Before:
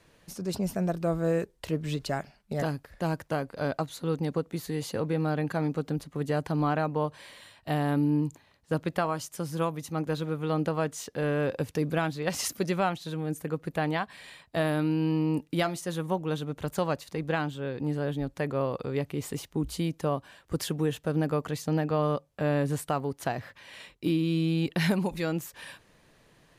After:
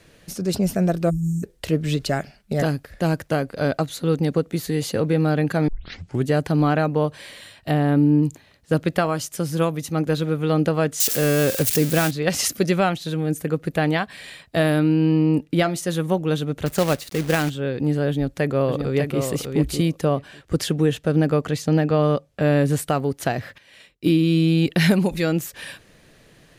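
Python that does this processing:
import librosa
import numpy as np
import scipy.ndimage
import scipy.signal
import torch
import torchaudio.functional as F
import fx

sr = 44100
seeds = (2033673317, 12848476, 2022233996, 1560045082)

y = fx.spec_erase(x, sr, start_s=1.1, length_s=0.33, low_hz=320.0, high_hz=5300.0)
y = fx.high_shelf(y, sr, hz=2900.0, db=-10.0, at=(7.71, 8.23))
y = fx.crossing_spikes(y, sr, level_db=-22.5, at=(11.0, 12.11))
y = fx.high_shelf(y, sr, hz=3900.0, db=-8.0, at=(14.79, 15.76))
y = fx.quant_companded(y, sr, bits=4, at=(16.66, 17.5))
y = fx.echo_throw(y, sr, start_s=18.08, length_s=1.13, ms=600, feedback_pct=10, wet_db=-6.0)
y = fx.high_shelf(y, sr, hz=12000.0, db=-11.5, at=(20.05, 22.42))
y = fx.upward_expand(y, sr, threshold_db=-55.0, expansion=1.5, at=(23.58, 24.07))
y = fx.edit(y, sr, fx.tape_start(start_s=5.68, length_s=0.59), tone=tone)
y = fx.peak_eq(y, sr, hz=970.0, db=-7.5, octaves=0.6)
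y = y * librosa.db_to_amplitude(9.0)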